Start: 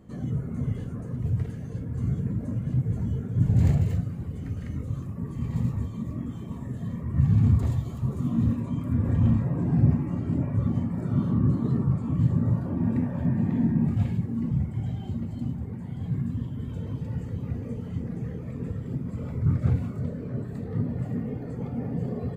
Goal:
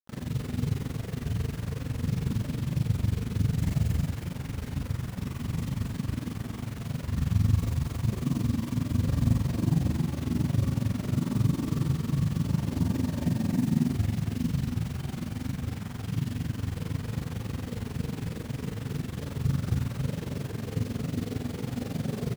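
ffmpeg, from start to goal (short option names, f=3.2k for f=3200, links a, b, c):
-filter_complex "[0:a]acrossover=split=940[a][b];[a]alimiter=limit=-16.5dB:level=0:latency=1:release=400[c];[c][b]amix=inputs=2:normalize=0,acrusher=bits=6:mix=0:aa=0.000001,tremolo=f=22:d=0.947,asplit=2[d][e];[e]adelay=37,volume=-2.5dB[f];[d][f]amix=inputs=2:normalize=0,aecho=1:1:87.46|279.9:0.282|0.501"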